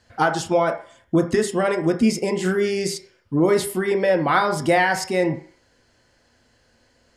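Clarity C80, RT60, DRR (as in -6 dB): 15.0 dB, 0.50 s, 4.0 dB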